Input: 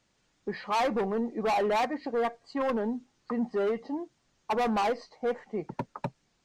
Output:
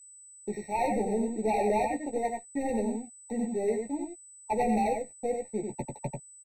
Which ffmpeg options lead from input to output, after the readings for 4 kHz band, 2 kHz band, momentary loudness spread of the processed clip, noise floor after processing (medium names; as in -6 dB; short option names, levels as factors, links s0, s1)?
under -10 dB, -4.5 dB, 12 LU, -52 dBFS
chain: -filter_complex "[0:a]aemphasis=mode=reproduction:type=cd,acrossover=split=130|850|3100[s0][s1][s2][s3];[s3]acrusher=samples=35:mix=1:aa=0.000001[s4];[s0][s1][s2][s4]amix=inputs=4:normalize=0,aeval=exprs='sgn(val(0))*max(abs(val(0))-0.00473,0)':c=same,agate=range=0.0224:threshold=0.00447:ratio=3:detection=peak,lowshelf=f=74:g=8,aecho=1:1:92:0.596,aeval=exprs='val(0)+0.00282*sin(2*PI*8000*n/s)':c=same,aeval=exprs='0.106*(abs(mod(val(0)/0.106+3,4)-2)-1)':c=same,asplit=2[s5][s6];[s6]adelay=14,volume=0.501[s7];[s5][s7]amix=inputs=2:normalize=0,afftfilt=real='re*eq(mod(floor(b*sr/1024/910),2),0)':imag='im*eq(mod(floor(b*sr/1024/910),2),0)':win_size=1024:overlap=0.75,volume=0.841"